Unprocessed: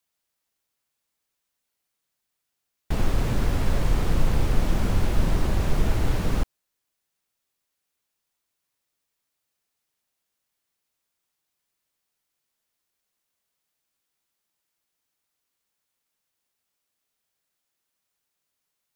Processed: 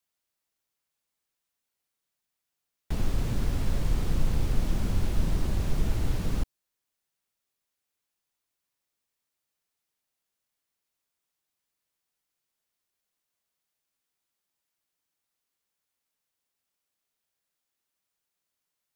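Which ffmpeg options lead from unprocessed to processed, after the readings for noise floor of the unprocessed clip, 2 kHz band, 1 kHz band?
-81 dBFS, -8.0 dB, -9.0 dB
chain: -filter_complex "[0:a]acrossover=split=330|3000[a][b][c];[b]acompressor=threshold=-47dB:ratio=1.5[d];[a][d][c]amix=inputs=3:normalize=0,volume=-4dB"

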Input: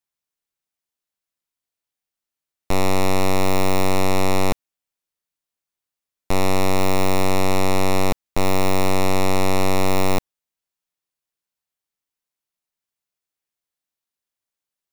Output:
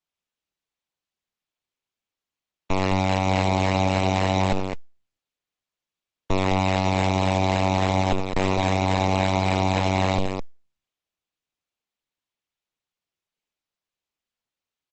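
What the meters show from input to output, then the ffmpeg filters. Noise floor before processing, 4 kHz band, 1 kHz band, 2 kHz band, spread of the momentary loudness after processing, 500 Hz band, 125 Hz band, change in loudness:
under -85 dBFS, -1.5 dB, 0.0 dB, -1.0 dB, 6 LU, -3.0 dB, +2.0 dB, -1.0 dB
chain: -filter_complex "[0:a]aeval=exprs='0.2*(cos(1*acos(clip(val(0)/0.2,-1,1)))-cos(1*PI/2))+0.02*(cos(2*acos(clip(val(0)/0.2,-1,1)))-cos(2*PI/2))+0.00316*(cos(3*acos(clip(val(0)/0.2,-1,1)))-cos(3*PI/2))+0.00251*(cos(4*acos(clip(val(0)/0.2,-1,1)))-cos(4*PI/2))+0.00158*(cos(8*acos(clip(val(0)/0.2,-1,1)))-cos(8*PI/2))':c=same,acrossover=split=740|1800[a][b][c];[a]acrusher=samples=13:mix=1:aa=0.000001:lfo=1:lforange=13:lforate=3.6[d];[c]asuperpass=centerf=2700:order=4:qfactor=1.4[e];[d][b][e]amix=inputs=3:normalize=0,aecho=1:1:72.89|209.9:0.282|0.447" -ar 48000 -c:a libopus -b:a 10k

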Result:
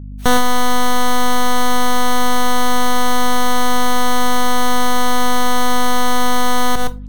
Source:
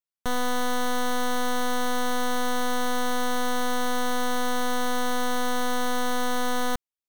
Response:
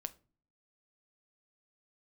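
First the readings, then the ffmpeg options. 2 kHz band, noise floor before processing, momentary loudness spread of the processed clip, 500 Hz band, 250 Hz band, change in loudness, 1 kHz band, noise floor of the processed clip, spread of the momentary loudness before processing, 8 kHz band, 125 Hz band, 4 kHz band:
+8.5 dB, under -85 dBFS, 0 LU, +7.5 dB, +9.5 dB, +10.0 dB, +11.5 dB, -29 dBFS, 0 LU, +10.5 dB, n/a, +10.5 dB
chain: -filter_complex "[0:a]aeval=exprs='val(0)+0.00562*(sin(2*PI*50*n/s)+sin(2*PI*2*50*n/s)/2+sin(2*PI*3*50*n/s)/3+sin(2*PI*4*50*n/s)/4+sin(2*PI*5*50*n/s)/5)':c=same,asplit=2[a][b];[1:a]atrim=start_sample=2205,adelay=116[c];[b][c]afir=irnorm=-1:irlink=0,volume=-7dB[d];[a][d]amix=inputs=2:normalize=0,alimiter=level_in=23dB:limit=-1dB:release=50:level=0:latency=1,volume=-7dB" -ar 44100 -c:a wmav2 -b:a 64k

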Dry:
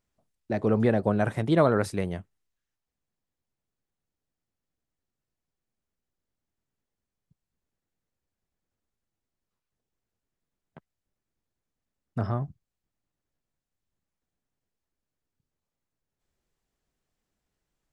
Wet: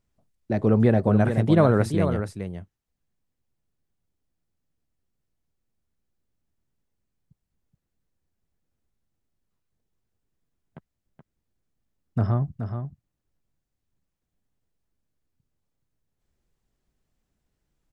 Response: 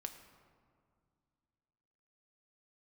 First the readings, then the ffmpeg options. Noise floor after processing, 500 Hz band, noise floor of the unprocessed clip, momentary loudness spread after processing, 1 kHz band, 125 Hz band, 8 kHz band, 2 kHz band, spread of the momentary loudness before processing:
-82 dBFS, +2.5 dB, under -85 dBFS, 17 LU, +1.5 dB, +7.5 dB, n/a, +1.0 dB, 14 LU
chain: -af "lowshelf=f=270:g=8,aecho=1:1:425:0.398"

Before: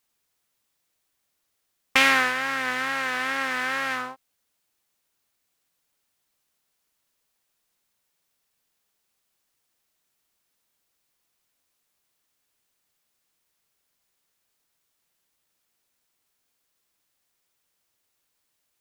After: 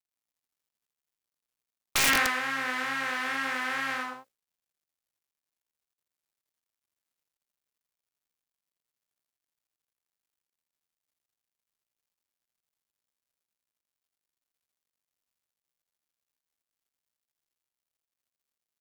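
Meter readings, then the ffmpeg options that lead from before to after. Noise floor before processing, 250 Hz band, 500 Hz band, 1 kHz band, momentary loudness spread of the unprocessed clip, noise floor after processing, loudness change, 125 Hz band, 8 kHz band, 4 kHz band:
-76 dBFS, -4.0 dB, -6.0 dB, -4.5 dB, 10 LU, under -85 dBFS, -4.0 dB, +0.5 dB, +4.0 dB, -3.0 dB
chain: -af "bandreject=f=60:t=h:w=6,bandreject=f=120:t=h:w=6,bandreject=f=180:t=h:w=6,bandreject=f=240:t=h:w=6,bandreject=f=300:t=h:w=6,bandreject=f=360:t=h:w=6,bandreject=f=420:t=h:w=6,bandreject=f=480:t=h:w=6,bandreject=f=540:t=h:w=6,bandreject=f=600:t=h:w=6,acrusher=bits=10:mix=0:aa=0.000001,aecho=1:1:82:0.708,aeval=exprs='(mod(2.11*val(0)+1,2)-1)/2.11':c=same,volume=-5.5dB"

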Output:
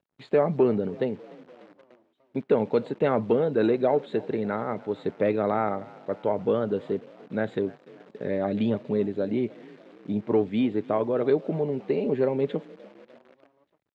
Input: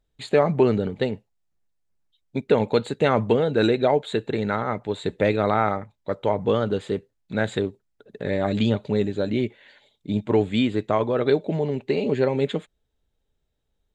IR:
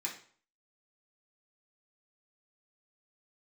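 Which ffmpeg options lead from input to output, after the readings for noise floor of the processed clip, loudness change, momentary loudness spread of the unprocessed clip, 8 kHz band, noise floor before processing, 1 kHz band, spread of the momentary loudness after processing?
-68 dBFS, -3.0 dB, 10 LU, n/a, -75 dBFS, -5.0 dB, 10 LU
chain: -filter_complex "[0:a]acrossover=split=780[a][b];[a]acontrast=57[c];[c][b]amix=inputs=2:normalize=0,crystalizer=i=0.5:c=0,asplit=5[d][e][f][g][h];[e]adelay=296,afreqshift=37,volume=-22.5dB[i];[f]adelay=592,afreqshift=74,volume=-27.1dB[j];[g]adelay=888,afreqshift=111,volume=-31.7dB[k];[h]adelay=1184,afreqshift=148,volume=-36.2dB[l];[d][i][j][k][l]amix=inputs=5:normalize=0,acrusher=bits=8:dc=4:mix=0:aa=0.000001,highpass=160,lowpass=2.7k,volume=-7.5dB"

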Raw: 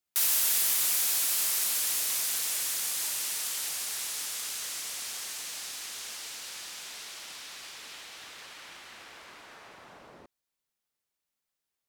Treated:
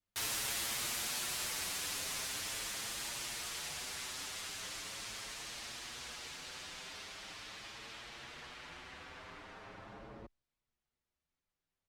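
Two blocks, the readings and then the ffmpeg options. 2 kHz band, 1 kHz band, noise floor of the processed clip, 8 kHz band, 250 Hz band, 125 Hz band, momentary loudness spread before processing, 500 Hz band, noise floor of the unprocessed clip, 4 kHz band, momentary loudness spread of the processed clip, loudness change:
-3.0 dB, -1.5 dB, under -85 dBFS, -11.0 dB, +3.0 dB, n/a, 21 LU, 0.0 dB, under -85 dBFS, -6.0 dB, 16 LU, -12.0 dB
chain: -filter_complex "[0:a]aemphasis=mode=reproduction:type=bsi,asplit=2[a][b];[b]adelay=7.1,afreqshift=0.41[c];[a][c]amix=inputs=2:normalize=1,volume=1.5dB"

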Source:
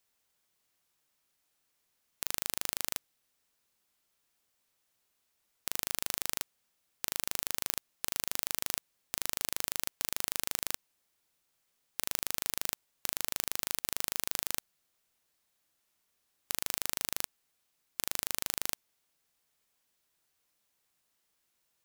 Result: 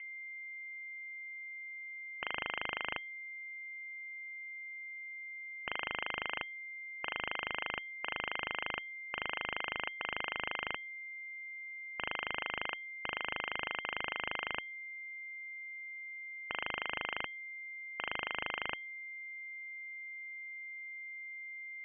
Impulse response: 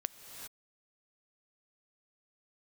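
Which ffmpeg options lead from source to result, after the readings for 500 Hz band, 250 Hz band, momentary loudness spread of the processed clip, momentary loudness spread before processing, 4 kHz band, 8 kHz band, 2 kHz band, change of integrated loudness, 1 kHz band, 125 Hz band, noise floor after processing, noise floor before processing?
+2.5 dB, -1.5 dB, 6 LU, 6 LU, -2.5 dB, under -40 dB, +8.5 dB, -5.5 dB, +5.0 dB, -3.5 dB, -46 dBFS, -78 dBFS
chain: -af "aeval=exprs='val(0)+0.00398*sin(2*PI*1100*n/s)':c=same,lowpass=f=2.7k:t=q:w=0.5098,lowpass=f=2.7k:t=q:w=0.6013,lowpass=f=2.7k:t=q:w=0.9,lowpass=f=2.7k:t=q:w=2.563,afreqshift=-3200,volume=5dB"

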